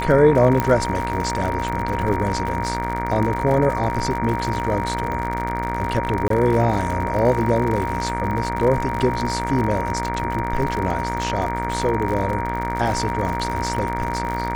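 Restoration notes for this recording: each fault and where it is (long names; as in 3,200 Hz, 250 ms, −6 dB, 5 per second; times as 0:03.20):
mains buzz 60 Hz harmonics 39 −27 dBFS
surface crackle 74 per second −25 dBFS
whistle 940 Hz −25 dBFS
0:00.60: click −7 dBFS
0:06.28–0:06.30: drop-out 23 ms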